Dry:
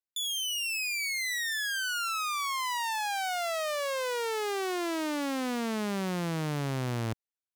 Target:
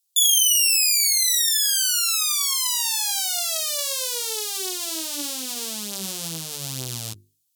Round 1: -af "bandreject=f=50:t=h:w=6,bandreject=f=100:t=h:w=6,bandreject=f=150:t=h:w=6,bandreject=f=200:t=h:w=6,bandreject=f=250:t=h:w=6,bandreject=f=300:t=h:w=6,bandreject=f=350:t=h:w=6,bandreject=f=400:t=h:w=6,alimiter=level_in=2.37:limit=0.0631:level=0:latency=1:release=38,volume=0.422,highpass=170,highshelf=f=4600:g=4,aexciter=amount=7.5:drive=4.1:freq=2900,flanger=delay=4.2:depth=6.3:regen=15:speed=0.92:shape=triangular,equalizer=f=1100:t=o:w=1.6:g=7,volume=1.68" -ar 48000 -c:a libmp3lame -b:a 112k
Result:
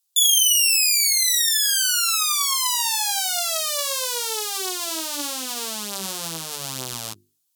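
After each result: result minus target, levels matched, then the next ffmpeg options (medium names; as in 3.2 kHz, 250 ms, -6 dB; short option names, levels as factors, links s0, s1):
1 kHz band +7.5 dB; 125 Hz band -5.5 dB
-af "bandreject=f=50:t=h:w=6,bandreject=f=100:t=h:w=6,bandreject=f=150:t=h:w=6,bandreject=f=200:t=h:w=6,bandreject=f=250:t=h:w=6,bandreject=f=300:t=h:w=6,bandreject=f=350:t=h:w=6,bandreject=f=400:t=h:w=6,alimiter=level_in=2.37:limit=0.0631:level=0:latency=1:release=38,volume=0.422,highpass=170,highshelf=f=4600:g=4,aexciter=amount=7.5:drive=4.1:freq=2900,flanger=delay=4.2:depth=6.3:regen=15:speed=0.92:shape=triangular,equalizer=f=1100:t=o:w=1.6:g=-2,volume=1.68" -ar 48000 -c:a libmp3lame -b:a 112k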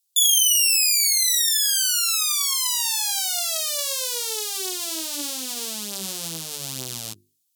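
125 Hz band -5.5 dB
-af "bandreject=f=50:t=h:w=6,bandreject=f=100:t=h:w=6,bandreject=f=150:t=h:w=6,bandreject=f=200:t=h:w=6,bandreject=f=250:t=h:w=6,bandreject=f=300:t=h:w=6,bandreject=f=350:t=h:w=6,bandreject=f=400:t=h:w=6,alimiter=level_in=2.37:limit=0.0631:level=0:latency=1:release=38,volume=0.422,highshelf=f=4600:g=4,aexciter=amount=7.5:drive=4.1:freq=2900,flanger=delay=4.2:depth=6.3:regen=15:speed=0.92:shape=triangular,equalizer=f=1100:t=o:w=1.6:g=-2,volume=1.68" -ar 48000 -c:a libmp3lame -b:a 112k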